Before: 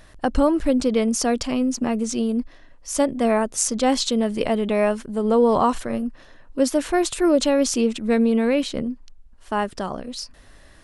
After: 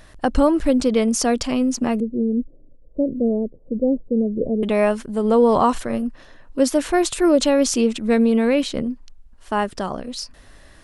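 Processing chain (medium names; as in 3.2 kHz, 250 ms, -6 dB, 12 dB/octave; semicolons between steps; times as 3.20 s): 2.00–4.63 s: elliptic low-pass 520 Hz, stop band 80 dB; trim +2 dB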